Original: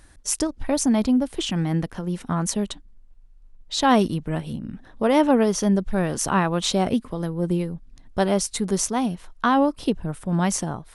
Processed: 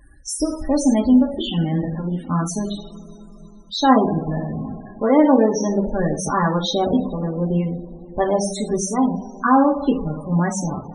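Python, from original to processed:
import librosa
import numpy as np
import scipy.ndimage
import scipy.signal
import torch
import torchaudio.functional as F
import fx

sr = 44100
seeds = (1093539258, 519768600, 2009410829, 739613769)

y = fx.rev_double_slope(x, sr, seeds[0], early_s=0.59, late_s=3.9, knee_db=-18, drr_db=-1.0)
y = fx.spec_topn(y, sr, count=32)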